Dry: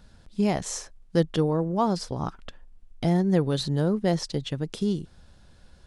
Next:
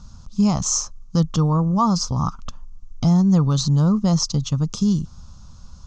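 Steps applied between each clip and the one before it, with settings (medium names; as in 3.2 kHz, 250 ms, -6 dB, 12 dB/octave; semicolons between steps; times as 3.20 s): FFT filter 130 Hz 0 dB, 240 Hz -4 dB, 360 Hz -17 dB, 720 Hz -11 dB, 1.2 kHz +3 dB, 1.7 kHz -22 dB, 2.6 kHz -13 dB, 3.7 kHz -10 dB, 6.5 kHz +6 dB, 10 kHz -26 dB; in parallel at +1.5 dB: peak limiter -25.5 dBFS, peak gain reduction 9.5 dB; on the sum: trim +5.5 dB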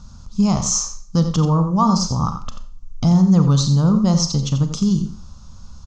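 echo from a far wall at 15 m, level -10 dB; Schroeder reverb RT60 0.46 s, combs from 29 ms, DRR 9.5 dB; trim +1.5 dB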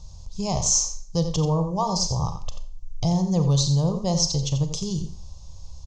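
static phaser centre 570 Hz, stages 4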